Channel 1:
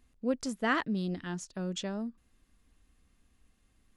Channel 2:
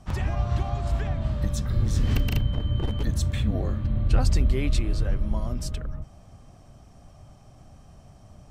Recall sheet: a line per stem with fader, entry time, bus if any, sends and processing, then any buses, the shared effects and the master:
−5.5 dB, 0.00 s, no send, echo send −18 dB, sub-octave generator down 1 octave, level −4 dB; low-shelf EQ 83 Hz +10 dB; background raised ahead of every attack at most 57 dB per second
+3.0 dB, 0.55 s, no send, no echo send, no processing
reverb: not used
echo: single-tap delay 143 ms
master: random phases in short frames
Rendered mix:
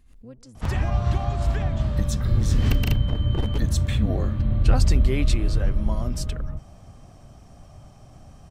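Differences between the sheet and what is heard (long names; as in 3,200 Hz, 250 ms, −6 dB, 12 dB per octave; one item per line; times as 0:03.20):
stem 1 −5.5 dB → −15.5 dB
master: missing random phases in short frames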